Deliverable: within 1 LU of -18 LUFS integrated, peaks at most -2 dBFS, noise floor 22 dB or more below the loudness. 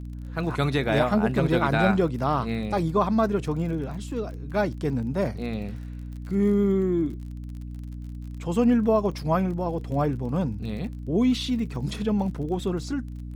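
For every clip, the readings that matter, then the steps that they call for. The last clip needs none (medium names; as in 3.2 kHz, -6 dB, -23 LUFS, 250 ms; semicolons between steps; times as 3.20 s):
tick rate 36 per s; hum 60 Hz; highest harmonic 300 Hz; hum level -34 dBFS; loudness -25.5 LUFS; peak level -6.5 dBFS; loudness target -18.0 LUFS
-> de-click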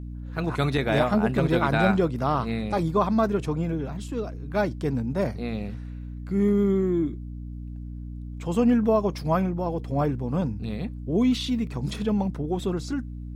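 tick rate 0 per s; hum 60 Hz; highest harmonic 300 Hz; hum level -34 dBFS
-> hum notches 60/120/180/240/300 Hz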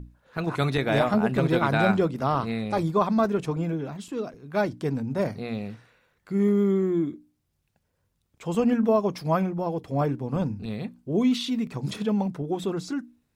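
hum not found; loudness -26.0 LUFS; peak level -7.0 dBFS; loudness target -18.0 LUFS
-> trim +8 dB; peak limiter -2 dBFS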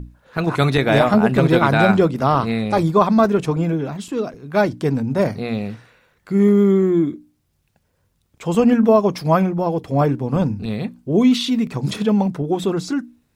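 loudness -18.0 LUFS; peak level -2.0 dBFS; noise floor -67 dBFS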